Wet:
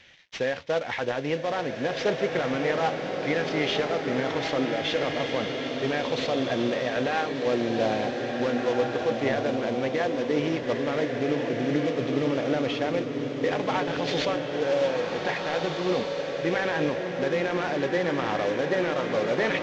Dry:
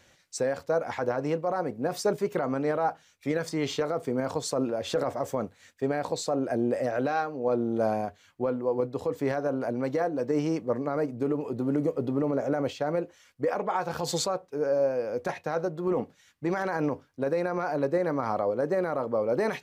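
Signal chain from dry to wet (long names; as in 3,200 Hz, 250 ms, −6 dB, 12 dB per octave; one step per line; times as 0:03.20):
variable-slope delta modulation 32 kbit/s
flat-topped bell 2,500 Hz +9.5 dB 1.3 octaves
slow-attack reverb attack 1,780 ms, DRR 2 dB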